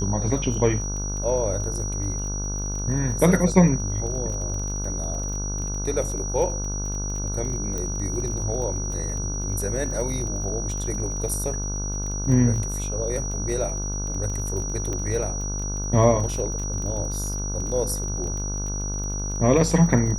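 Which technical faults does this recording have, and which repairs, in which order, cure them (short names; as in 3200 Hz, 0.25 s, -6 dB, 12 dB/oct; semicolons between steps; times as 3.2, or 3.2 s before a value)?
buzz 50 Hz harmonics 31 -29 dBFS
crackle 26/s -31 dBFS
tone 5800 Hz -31 dBFS
7.78 pop -17 dBFS
14.93 pop -18 dBFS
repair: de-click; notch 5800 Hz, Q 30; de-hum 50 Hz, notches 31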